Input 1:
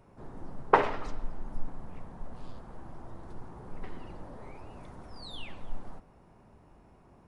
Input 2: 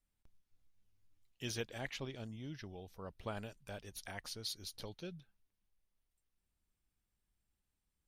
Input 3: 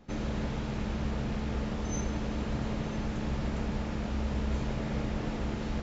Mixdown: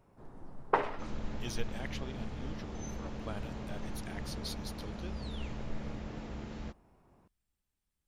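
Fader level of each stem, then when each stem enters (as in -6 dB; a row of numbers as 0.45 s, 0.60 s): -6.5 dB, -0.5 dB, -9.0 dB; 0.00 s, 0.00 s, 0.90 s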